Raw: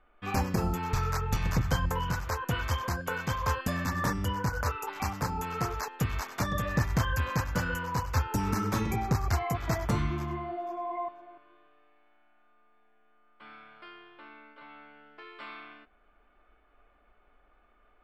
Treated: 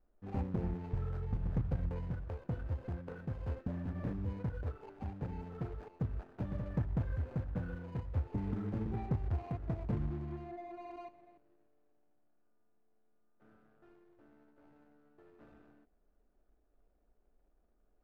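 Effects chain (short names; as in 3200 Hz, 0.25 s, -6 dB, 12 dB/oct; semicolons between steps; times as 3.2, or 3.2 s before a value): median filter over 41 samples; LPF 1100 Hz 6 dB/oct; gain -6 dB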